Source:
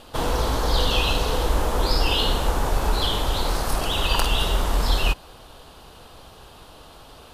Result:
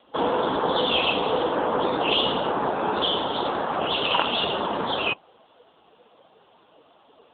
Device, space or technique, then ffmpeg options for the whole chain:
mobile call with aggressive noise cancelling: -filter_complex "[0:a]asettb=1/sr,asplit=3[s0][s1][s2];[s0]atrim=end=0.934[s3];[s1]atrim=start=0.93:end=2.16,asetpts=PTS-STARTPTS,afade=t=in:d=0.004:c=qsin,afade=t=out:st=1.226:d=0.004:c=qsin,acrossover=split=7900[s4][s5];[s5]acompressor=threshold=0.00224:ratio=4:attack=1:release=60[s6];[s4][s6]amix=inputs=2:normalize=0[s7];[s2]atrim=start=2.156[s8];[s3][s7]acrossfade=d=0.004:c1=hsin:c2=qsin[s9];[s9][s8]acrossfade=d=0.004:c1=qsin:c2=hsin,asplit=3[s10][s11][s12];[s10]afade=t=out:st=3.45:d=0.02[s13];[s11]bandreject=f=50:t=h:w=6,bandreject=f=100:t=h:w=6,bandreject=f=150:t=h:w=6,bandreject=f=200:t=h:w=6,bandreject=f=250:t=h:w=6,afade=t=in:st=3.45:d=0.02,afade=t=out:st=4.11:d=0.02[s14];[s12]afade=t=in:st=4.11:d=0.02[s15];[s13][s14][s15]amix=inputs=3:normalize=0,highpass=f=140:w=0.5412,highpass=f=140:w=1.3066,highpass=170,afftdn=nr=13:nf=-36,volume=1.68" -ar 8000 -c:a libopencore_amrnb -b:a 7950

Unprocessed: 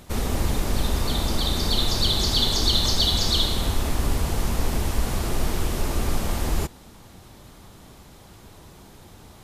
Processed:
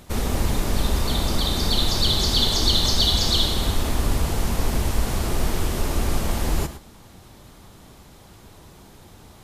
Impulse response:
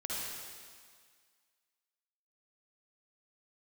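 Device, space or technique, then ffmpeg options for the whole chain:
keyed gated reverb: -filter_complex "[0:a]asplit=3[s0][s1][s2];[1:a]atrim=start_sample=2205[s3];[s1][s3]afir=irnorm=-1:irlink=0[s4];[s2]apad=whole_len=415960[s5];[s4][s5]sidechaingate=range=0.0224:threshold=0.0141:ratio=16:detection=peak,volume=0.237[s6];[s0][s6]amix=inputs=2:normalize=0"

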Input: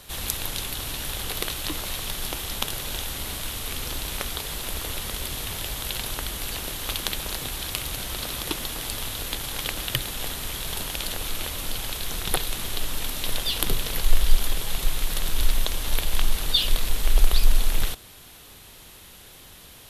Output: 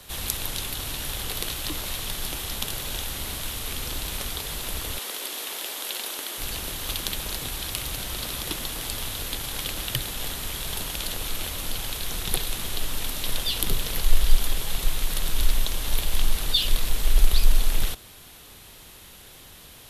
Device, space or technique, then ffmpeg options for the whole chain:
one-band saturation: -filter_complex "[0:a]asettb=1/sr,asplit=3[s0][s1][s2];[s0]atrim=end=4.984[s3];[s1]atrim=start=4.98:end=6.38,asetpts=PTS-STARTPTS,afade=t=in:d=0.004:c=qsin,afade=t=out:st=1.396:d=0.004:c=qsin,highpass=f=300:w=0.5412,highpass=f=300:w=1.3066[s4];[s2]atrim=start=6.376[s5];[s3][s4]acrossfade=d=0.004:c1=hsin:c2=qsin[s6];[s6][s5]acrossfade=d=0.004:c1=qsin:c2=hsin,acrossover=split=220|2900[s7][s8][s9];[s8]asoftclip=type=tanh:threshold=0.0335[s10];[s7][s10][s9]amix=inputs=3:normalize=0"

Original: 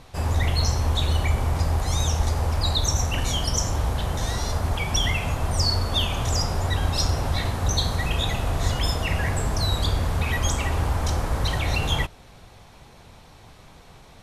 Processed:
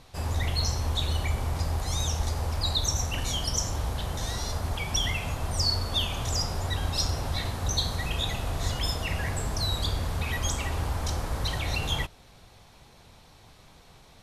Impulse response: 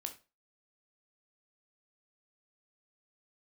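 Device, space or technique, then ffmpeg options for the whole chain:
presence and air boost: -af "equalizer=f=4300:t=o:w=1.1:g=3.5,highshelf=f=9600:g=5.5,volume=0.501"

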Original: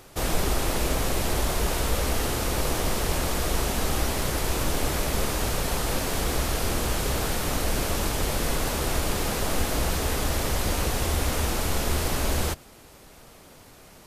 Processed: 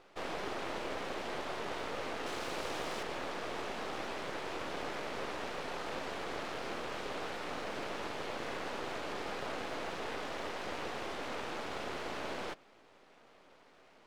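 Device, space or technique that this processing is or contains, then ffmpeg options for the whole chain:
crystal radio: -filter_complex "[0:a]highpass=320,lowpass=3000,aeval=exprs='if(lt(val(0),0),0.251*val(0),val(0))':c=same,asettb=1/sr,asplit=3[s0][s1][s2];[s0]atrim=end=2.264[s3];[s1]atrim=start=2.26:end=3.03,asetpts=PTS-STARTPTS,afade=t=in:d=0.004:c=qsin,afade=t=out:st=0.766:d=0.004:c=qsin,highshelf=f=4200:g=8[s4];[s2]atrim=start=3.026[s5];[s3][s4]acrossfade=d=0.004:c1=hsin:c2=qsin[s6];[s6][s5]acrossfade=d=0.004:c1=qsin:c2=hsin,volume=0.562"

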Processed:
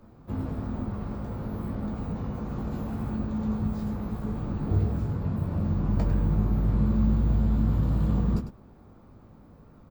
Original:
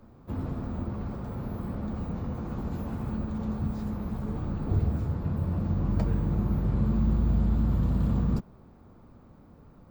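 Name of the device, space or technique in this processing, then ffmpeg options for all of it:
slapback doubling: -filter_complex "[0:a]asplit=3[s0][s1][s2];[s1]adelay=19,volume=0.473[s3];[s2]adelay=102,volume=0.335[s4];[s0][s3][s4]amix=inputs=3:normalize=0"

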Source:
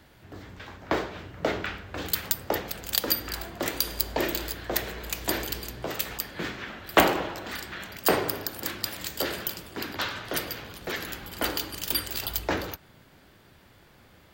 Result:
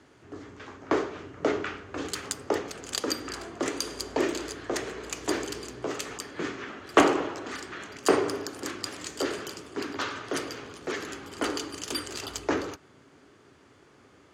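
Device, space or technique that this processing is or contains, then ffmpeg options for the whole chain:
car door speaker: -af "highpass=91,equalizer=f=190:t=q:w=4:g=-4,equalizer=f=280:t=q:w=4:g=8,equalizer=f=410:t=q:w=4:g=9,equalizer=f=1200:t=q:w=4:g=6,equalizer=f=3800:t=q:w=4:g=-4,equalizer=f=6500:t=q:w=4:g=6,lowpass=f=9500:w=0.5412,lowpass=f=9500:w=1.3066,volume=0.708"

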